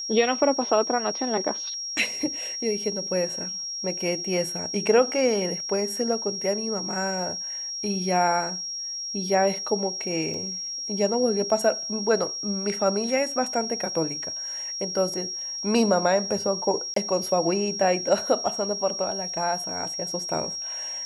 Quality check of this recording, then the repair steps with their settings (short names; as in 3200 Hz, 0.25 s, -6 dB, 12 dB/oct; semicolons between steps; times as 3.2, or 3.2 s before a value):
tone 5600 Hz -30 dBFS
10.34 gap 2.7 ms
16.94–16.96 gap 23 ms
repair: notch 5600 Hz, Q 30; interpolate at 10.34, 2.7 ms; interpolate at 16.94, 23 ms